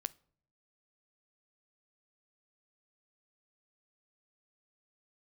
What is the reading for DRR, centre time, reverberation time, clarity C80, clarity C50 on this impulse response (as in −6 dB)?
16.0 dB, 2 ms, non-exponential decay, 29.0 dB, 23.5 dB